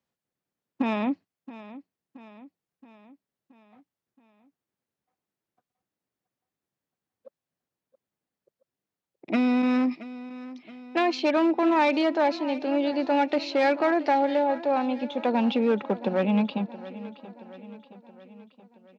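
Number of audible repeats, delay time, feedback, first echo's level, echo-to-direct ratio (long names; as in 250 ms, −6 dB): 4, 674 ms, 56%, −16.5 dB, −15.0 dB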